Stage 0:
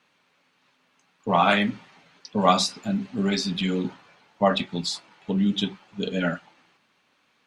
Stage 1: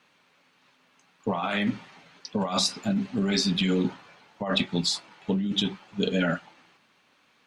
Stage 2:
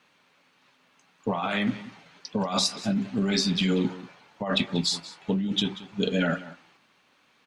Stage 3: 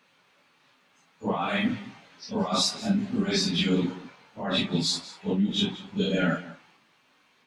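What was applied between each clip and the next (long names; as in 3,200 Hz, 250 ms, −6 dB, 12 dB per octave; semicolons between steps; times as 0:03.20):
compressor whose output falls as the input rises −25 dBFS, ratio −1
single-tap delay 186 ms −17 dB
random phases in long frames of 100 ms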